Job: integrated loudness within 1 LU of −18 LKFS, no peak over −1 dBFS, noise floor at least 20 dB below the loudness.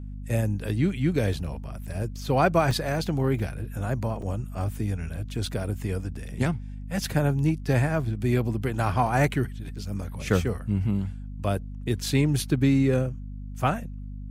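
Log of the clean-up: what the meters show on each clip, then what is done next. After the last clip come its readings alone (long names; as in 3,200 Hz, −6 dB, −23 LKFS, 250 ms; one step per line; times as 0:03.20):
number of dropouts 5; longest dropout 3.2 ms; mains hum 50 Hz; hum harmonics up to 250 Hz; level of the hum −34 dBFS; integrated loudness −27.0 LKFS; sample peak −9.0 dBFS; target loudness −18.0 LKFS
→ repair the gap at 0:02.71/0:03.39/0:04.22/0:05.46/0:09.07, 3.2 ms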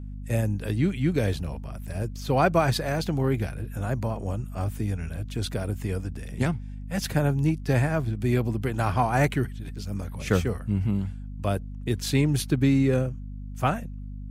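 number of dropouts 0; mains hum 50 Hz; hum harmonics up to 250 Hz; level of the hum −34 dBFS
→ mains-hum notches 50/100/150/200/250 Hz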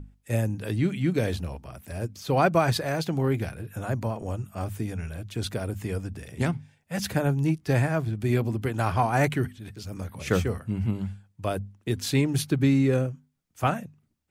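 mains hum none found; integrated loudness −27.5 LKFS; sample peak −8.5 dBFS; target loudness −18.0 LKFS
→ level +9.5 dB
brickwall limiter −1 dBFS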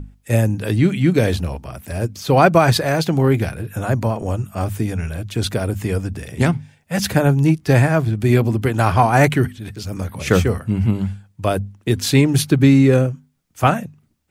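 integrated loudness −18.0 LKFS; sample peak −1.0 dBFS; background noise floor −60 dBFS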